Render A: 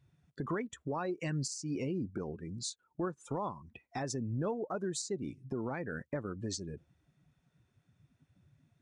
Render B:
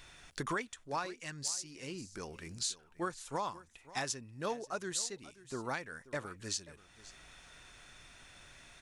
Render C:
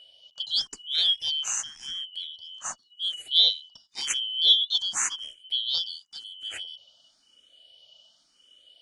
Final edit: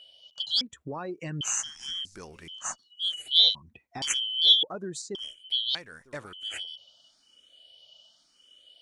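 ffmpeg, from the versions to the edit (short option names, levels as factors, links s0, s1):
-filter_complex "[0:a]asplit=3[s0][s1][s2];[1:a]asplit=2[s3][s4];[2:a]asplit=6[s5][s6][s7][s8][s9][s10];[s5]atrim=end=0.612[s11];[s0]atrim=start=0.608:end=1.412[s12];[s6]atrim=start=1.408:end=2.052[s13];[s3]atrim=start=2.048:end=2.482[s14];[s7]atrim=start=2.478:end=3.552[s15];[s1]atrim=start=3.548:end=4.022[s16];[s8]atrim=start=4.018:end=4.632[s17];[s2]atrim=start=4.628:end=5.152[s18];[s9]atrim=start=5.148:end=5.752[s19];[s4]atrim=start=5.748:end=6.332[s20];[s10]atrim=start=6.328[s21];[s11][s12]acrossfade=d=0.004:c1=hsin:c2=hsin[s22];[s22][s13]acrossfade=d=0.004:c1=hsin:c2=hsin[s23];[s23][s14]acrossfade=d=0.004:c1=hsin:c2=hsin[s24];[s24][s15]acrossfade=d=0.004:c1=hsin:c2=hsin[s25];[s25][s16]acrossfade=d=0.004:c1=hsin:c2=hsin[s26];[s26][s17]acrossfade=d=0.004:c1=hsin:c2=hsin[s27];[s27][s18]acrossfade=d=0.004:c1=hsin:c2=hsin[s28];[s28][s19]acrossfade=d=0.004:c1=hsin:c2=hsin[s29];[s29][s20]acrossfade=d=0.004:c1=hsin:c2=hsin[s30];[s30][s21]acrossfade=d=0.004:c1=hsin:c2=hsin"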